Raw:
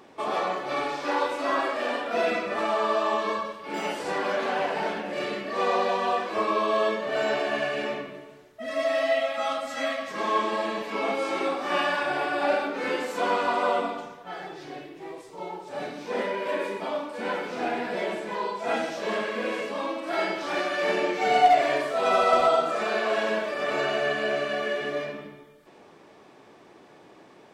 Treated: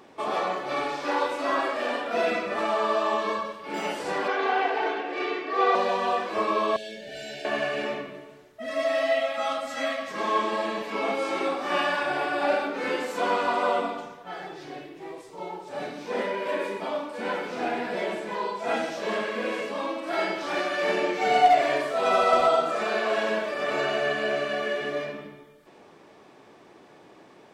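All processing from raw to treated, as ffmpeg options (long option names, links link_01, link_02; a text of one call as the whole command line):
ffmpeg -i in.wav -filter_complex "[0:a]asettb=1/sr,asplit=3[link_01][link_02][link_03];[link_01]atrim=end=4.284[link_04];[link_02]atrim=start=4.28:end=5.75,asetpts=PTS-STARTPTS,afade=type=in:duration=0.004:curve=qsin,afade=type=out:start_time=1.466:duration=0.004:curve=qsin,highpass=280,lowpass=4000,aecho=1:1:2.6:0.89,atrim=end_sample=64827[link_05];[link_03]atrim=start=5.746[link_06];[link_04][link_05]acrossfade=duration=0.004:curve1=hsin:curve2=qsin[link_07];[link_07][link_06]acrossfade=duration=0.004:curve1=qsin:curve2=hsin,asettb=1/sr,asplit=3[link_08][link_09][link_10];[link_08]atrim=end=6.764[link_11];[link_09]atrim=start=6.76:end=7.45,asetpts=PTS-STARTPTS,afade=type=in:duration=0.004:curve=qsin,afade=type=out:start_time=0.686:duration=0.004:curve=qsin,acrossover=split=150|3000[link_12][link_13][link_14];[link_13]acompressor=threshold=-42dB:ratio=3:attack=3.2:release=140:knee=2.83:detection=peak[link_15];[link_12][link_15][link_14]amix=inputs=3:normalize=0,asuperstop=centerf=1100:order=12:qfactor=1.8[link_16];[link_10]atrim=start=7.446[link_17];[link_11][link_16]acrossfade=duration=0.004:curve1=hsin:curve2=qsin[link_18];[link_18][link_17]acrossfade=duration=0.004:curve1=qsin:curve2=hsin" out.wav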